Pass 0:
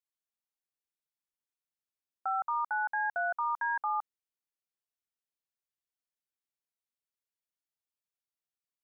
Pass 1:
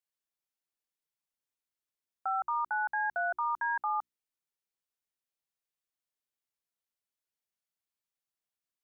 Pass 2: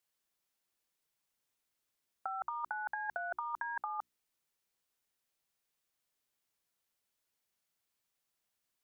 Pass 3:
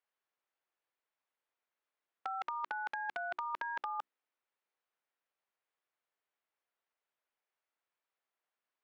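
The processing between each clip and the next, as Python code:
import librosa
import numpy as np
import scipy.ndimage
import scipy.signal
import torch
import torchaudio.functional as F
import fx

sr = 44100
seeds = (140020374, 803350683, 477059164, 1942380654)

y1 = fx.hum_notches(x, sr, base_hz=60, count=6)
y2 = fx.over_compress(y1, sr, threshold_db=-36.0, ratio=-0.5)
y3 = (np.mod(10.0 ** (26.5 / 20.0) * y2 + 1.0, 2.0) - 1.0) / 10.0 ** (26.5 / 20.0)
y3 = fx.bandpass_edges(y3, sr, low_hz=440.0, high_hz=2100.0)
y3 = y3 * librosa.db_to_amplitude(1.0)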